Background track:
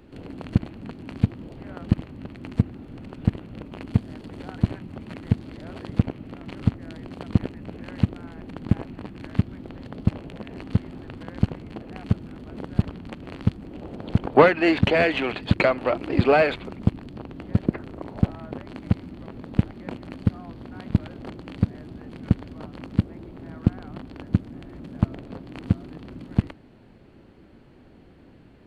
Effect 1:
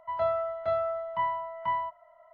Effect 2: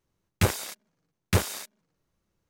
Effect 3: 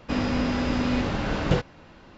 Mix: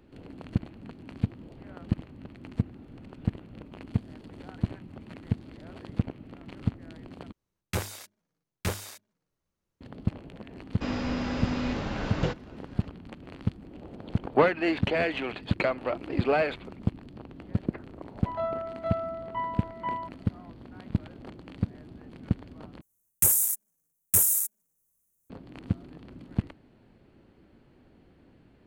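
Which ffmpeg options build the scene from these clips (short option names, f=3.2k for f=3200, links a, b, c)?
-filter_complex "[2:a]asplit=2[a][b];[0:a]volume=-7dB[c];[a]bandreject=f=50:t=h:w=6,bandreject=f=100:t=h:w=6,bandreject=f=150:t=h:w=6,bandreject=f=200:t=h:w=6,bandreject=f=250:t=h:w=6,bandreject=f=300:t=h:w=6,bandreject=f=350:t=h:w=6[d];[b]aexciter=amount=14.9:drive=8.7:freq=6.9k[e];[c]asplit=3[f][g][h];[f]atrim=end=7.324[i];[d]atrim=end=2.49,asetpts=PTS-STARTPTS,volume=-6.5dB[j];[g]atrim=start=9.806:end=22.814[k];[e]atrim=end=2.49,asetpts=PTS-STARTPTS,volume=-12.5dB[l];[h]atrim=start=25.296[m];[3:a]atrim=end=2.17,asetpts=PTS-STARTPTS,volume=-5.5dB,afade=t=in:d=0.004:c=hsin,afade=t=out:st=2.166:d=0.004:c=hsin,adelay=10720[n];[1:a]atrim=end=2.33,asetpts=PTS-STARTPTS,volume=-3.5dB,afade=t=in:d=0.004:c=hsin,afade=t=out:st=2.326:d=0.004:c=hsin,adelay=18180[o];[i][j]acrossfade=d=0.004:c1=hsin:c2=hsin[p];[p][k]acrossfade=d=0.004:c1=hsin:c2=hsin[q];[q][l]acrossfade=d=0.004:c1=hsin:c2=hsin[r];[r][m]acrossfade=d=0.004:c1=hsin:c2=hsin[s];[s][n][o]amix=inputs=3:normalize=0"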